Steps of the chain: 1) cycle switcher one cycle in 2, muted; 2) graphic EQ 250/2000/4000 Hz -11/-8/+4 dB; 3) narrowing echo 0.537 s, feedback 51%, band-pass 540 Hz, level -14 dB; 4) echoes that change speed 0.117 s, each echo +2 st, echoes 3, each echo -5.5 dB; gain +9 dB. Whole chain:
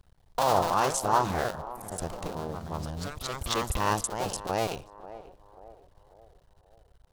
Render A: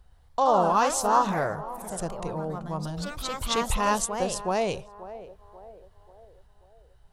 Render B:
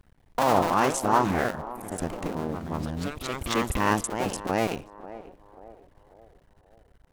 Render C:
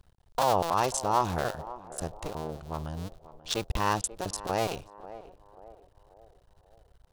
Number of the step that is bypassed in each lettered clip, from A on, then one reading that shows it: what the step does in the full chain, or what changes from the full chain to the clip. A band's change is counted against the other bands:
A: 1, loudness change +3.0 LU; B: 2, 250 Hz band +6.0 dB; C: 4, loudness change -1.0 LU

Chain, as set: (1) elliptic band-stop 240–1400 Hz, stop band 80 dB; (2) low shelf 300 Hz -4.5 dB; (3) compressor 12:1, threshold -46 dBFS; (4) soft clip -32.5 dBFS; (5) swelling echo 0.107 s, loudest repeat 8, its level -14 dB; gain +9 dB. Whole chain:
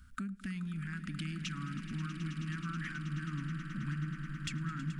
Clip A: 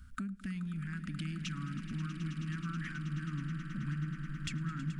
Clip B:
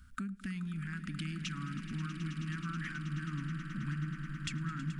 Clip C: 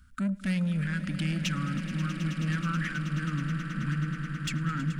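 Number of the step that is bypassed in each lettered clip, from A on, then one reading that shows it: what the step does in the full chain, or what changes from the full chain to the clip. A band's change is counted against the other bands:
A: 2, 125 Hz band +2.0 dB; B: 4, crest factor change +3.0 dB; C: 3, mean gain reduction 8.0 dB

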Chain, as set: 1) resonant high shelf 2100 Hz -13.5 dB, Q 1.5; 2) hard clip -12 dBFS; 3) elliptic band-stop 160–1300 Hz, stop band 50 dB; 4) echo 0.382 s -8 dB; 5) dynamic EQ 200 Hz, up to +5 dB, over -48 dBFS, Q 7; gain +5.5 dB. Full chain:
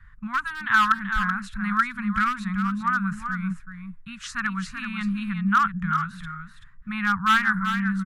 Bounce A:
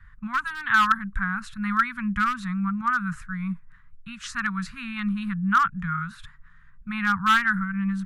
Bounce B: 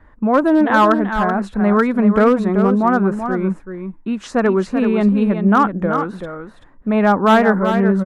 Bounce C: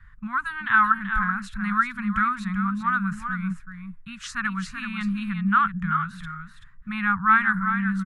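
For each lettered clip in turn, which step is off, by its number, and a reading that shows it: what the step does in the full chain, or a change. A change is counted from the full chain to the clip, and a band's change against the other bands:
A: 4, momentary loudness spread change -4 LU; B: 3, 2 kHz band -8.5 dB; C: 2, distortion -21 dB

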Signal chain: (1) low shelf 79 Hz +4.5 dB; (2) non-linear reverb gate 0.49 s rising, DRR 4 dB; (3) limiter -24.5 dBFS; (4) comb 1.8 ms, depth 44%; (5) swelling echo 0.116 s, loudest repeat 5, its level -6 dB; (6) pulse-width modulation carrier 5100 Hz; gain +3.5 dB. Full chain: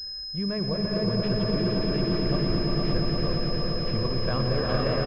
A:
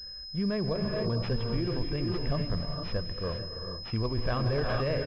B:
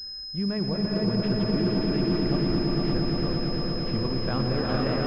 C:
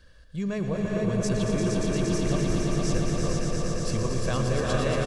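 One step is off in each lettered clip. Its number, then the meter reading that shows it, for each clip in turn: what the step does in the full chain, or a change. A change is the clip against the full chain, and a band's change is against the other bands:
5, momentary loudness spread change +3 LU; 4, 250 Hz band +3.0 dB; 6, 4 kHz band -8.0 dB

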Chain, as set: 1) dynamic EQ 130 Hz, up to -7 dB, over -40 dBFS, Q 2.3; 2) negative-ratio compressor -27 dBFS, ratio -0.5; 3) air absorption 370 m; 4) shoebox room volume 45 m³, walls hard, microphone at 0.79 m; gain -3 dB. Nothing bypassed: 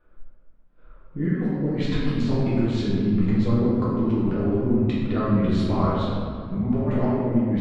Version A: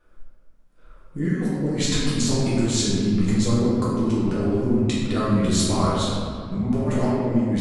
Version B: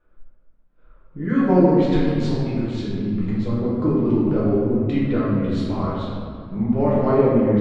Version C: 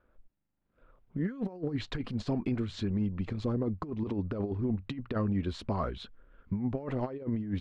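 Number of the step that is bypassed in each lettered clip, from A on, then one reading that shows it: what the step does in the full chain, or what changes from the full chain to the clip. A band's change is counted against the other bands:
3, 4 kHz band +10.0 dB; 2, crest factor change +4.0 dB; 4, echo-to-direct 9.0 dB to none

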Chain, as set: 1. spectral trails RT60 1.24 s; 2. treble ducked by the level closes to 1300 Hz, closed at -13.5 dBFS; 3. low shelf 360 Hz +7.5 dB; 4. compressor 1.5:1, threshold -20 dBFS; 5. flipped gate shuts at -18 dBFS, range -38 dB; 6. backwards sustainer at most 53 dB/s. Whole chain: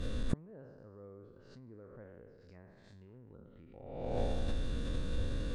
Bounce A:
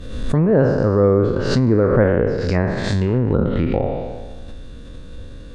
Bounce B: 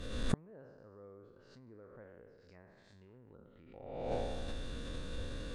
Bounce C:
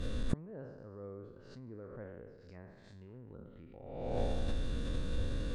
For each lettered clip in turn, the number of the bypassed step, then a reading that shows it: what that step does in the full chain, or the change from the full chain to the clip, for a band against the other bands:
5, momentary loudness spread change -11 LU; 3, 125 Hz band -5.5 dB; 4, mean gain reduction 2.5 dB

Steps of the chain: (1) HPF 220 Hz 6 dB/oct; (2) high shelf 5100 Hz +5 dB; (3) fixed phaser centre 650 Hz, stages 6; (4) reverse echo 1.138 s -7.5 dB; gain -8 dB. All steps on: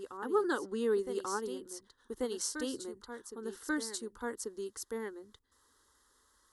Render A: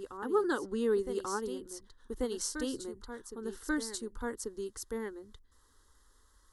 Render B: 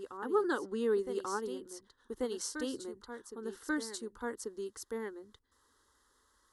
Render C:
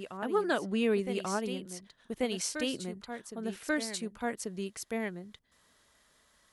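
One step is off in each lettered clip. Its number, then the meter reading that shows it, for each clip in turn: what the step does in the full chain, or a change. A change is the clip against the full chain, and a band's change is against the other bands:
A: 1, 250 Hz band +2.0 dB; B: 2, 8 kHz band -3.5 dB; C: 3, 8 kHz band -3.5 dB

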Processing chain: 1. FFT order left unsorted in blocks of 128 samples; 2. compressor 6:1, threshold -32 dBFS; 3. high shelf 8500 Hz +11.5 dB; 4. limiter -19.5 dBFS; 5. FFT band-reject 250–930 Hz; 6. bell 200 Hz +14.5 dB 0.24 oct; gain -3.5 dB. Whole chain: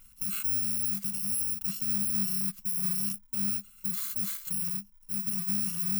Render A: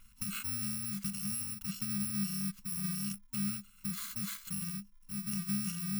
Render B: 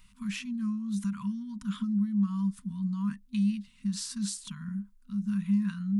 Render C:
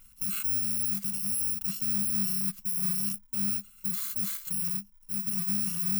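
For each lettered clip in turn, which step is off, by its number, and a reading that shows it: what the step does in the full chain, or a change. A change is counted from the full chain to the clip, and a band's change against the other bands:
3, 8 kHz band -7.0 dB; 1, 8 kHz band -15.5 dB; 2, mean gain reduction 4.0 dB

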